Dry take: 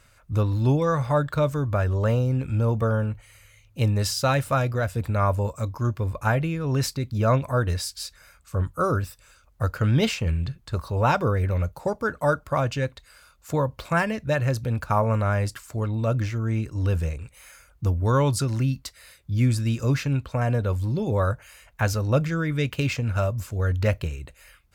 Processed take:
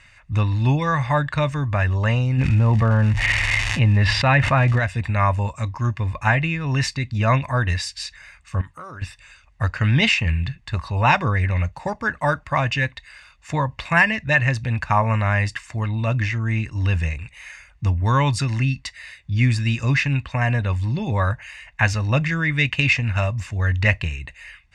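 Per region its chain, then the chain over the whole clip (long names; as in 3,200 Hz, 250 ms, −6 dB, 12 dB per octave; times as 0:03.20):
0:02.37–0:04.78: high-frequency loss of the air 460 metres + surface crackle 390 per second −42 dBFS + envelope flattener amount 70%
0:08.61–0:09.02: low-shelf EQ 170 Hz −11 dB + downward compressor 3 to 1, threshold −39 dBFS
whole clip: low-pass filter 8,300 Hz 24 dB per octave; parametric band 2,200 Hz +15 dB 1 octave; comb filter 1.1 ms, depth 53%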